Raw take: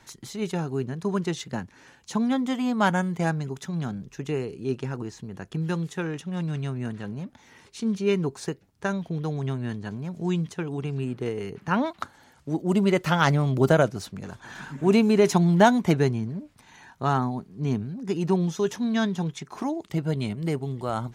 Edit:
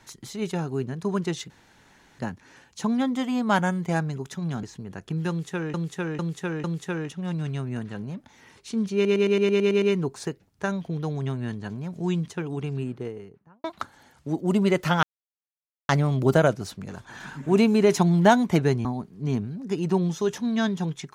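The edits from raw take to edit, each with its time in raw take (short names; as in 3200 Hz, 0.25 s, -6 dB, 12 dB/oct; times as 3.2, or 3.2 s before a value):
1.5 insert room tone 0.69 s
3.94–5.07 cut
5.73–6.18 loop, 4 plays
8.03 stutter 0.11 s, 9 plays
10.85–11.85 studio fade out
13.24 insert silence 0.86 s
16.2–17.23 cut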